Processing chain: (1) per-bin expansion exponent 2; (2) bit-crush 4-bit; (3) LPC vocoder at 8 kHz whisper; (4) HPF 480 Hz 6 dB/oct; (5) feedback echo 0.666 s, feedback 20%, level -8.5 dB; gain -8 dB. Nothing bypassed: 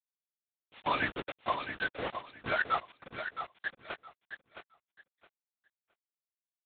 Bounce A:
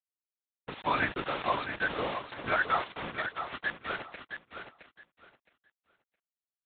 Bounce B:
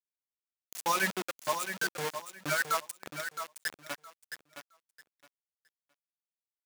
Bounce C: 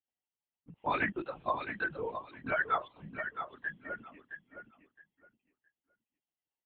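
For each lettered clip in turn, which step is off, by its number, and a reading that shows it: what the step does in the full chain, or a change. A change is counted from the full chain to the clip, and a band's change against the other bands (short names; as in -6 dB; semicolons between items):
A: 1, momentary loudness spread change -1 LU; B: 3, 4 kHz band +2.5 dB; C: 2, distortion -5 dB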